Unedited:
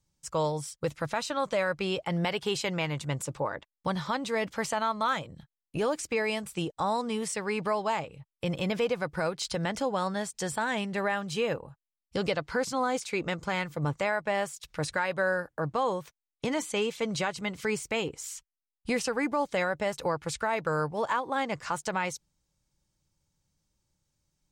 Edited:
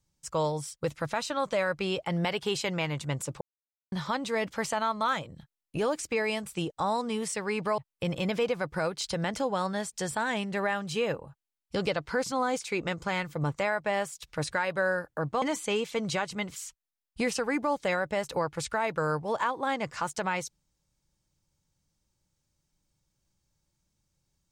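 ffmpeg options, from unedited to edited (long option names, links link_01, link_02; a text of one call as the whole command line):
ffmpeg -i in.wav -filter_complex "[0:a]asplit=6[link_01][link_02][link_03][link_04][link_05][link_06];[link_01]atrim=end=3.41,asetpts=PTS-STARTPTS,afade=type=out:start_time=3.406:duration=0.004:curve=hsin[link_07];[link_02]atrim=start=3.41:end=3.92,asetpts=PTS-STARTPTS,volume=0[link_08];[link_03]atrim=start=3.92:end=7.782,asetpts=PTS-STARTPTS,afade=type=in:duration=0.004:curve=hsin[link_09];[link_04]atrim=start=8.188:end=15.832[link_10];[link_05]atrim=start=16.478:end=17.622[link_11];[link_06]atrim=start=18.248[link_12];[link_07][link_08][link_09]concat=n=3:v=0:a=1[link_13];[link_13][link_10]acrossfade=duration=0.004:curve1=hsin:curve2=hsin[link_14];[link_14][link_11]acrossfade=duration=0.004:curve1=hsin:curve2=hsin[link_15];[link_15][link_12]acrossfade=duration=0.004:curve1=hsin:curve2=hsin" out.wav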